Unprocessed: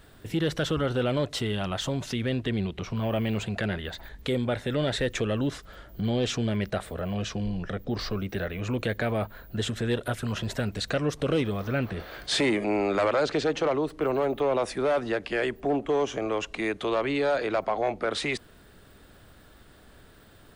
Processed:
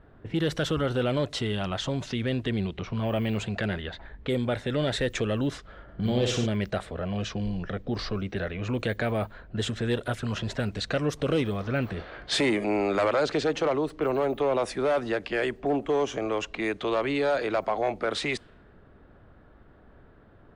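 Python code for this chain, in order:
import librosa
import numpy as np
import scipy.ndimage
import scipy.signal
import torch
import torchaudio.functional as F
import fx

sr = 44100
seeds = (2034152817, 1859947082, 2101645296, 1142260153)

y = fx.room_flutter(x, sr, wall_m=9.9, rt60_s=0.66, at=(5.87, 6.45), fade=0.02)
y = fx.env_lowpass(y, sr, base_hz=1200.0, full_db=-23.5)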